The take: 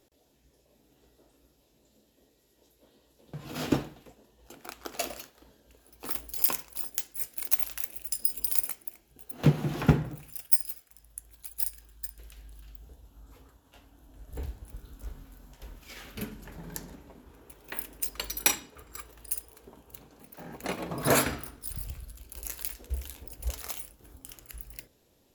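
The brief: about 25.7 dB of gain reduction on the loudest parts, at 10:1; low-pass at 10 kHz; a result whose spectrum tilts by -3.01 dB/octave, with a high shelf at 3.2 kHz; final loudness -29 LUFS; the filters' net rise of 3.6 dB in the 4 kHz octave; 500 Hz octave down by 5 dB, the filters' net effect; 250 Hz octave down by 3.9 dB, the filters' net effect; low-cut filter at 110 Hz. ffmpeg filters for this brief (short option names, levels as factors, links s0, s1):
-af "highpass=110,lowpass=10000,equalizer=f=250:t=o:g=-3.5,equalizer=f=500:t=o:g=-5.5,highshelf=f=3200:g=-4,equalizer=f=4000:t=o:g=7.5,acompressor=threshold=0.00501:ratio=10,volume=14.1"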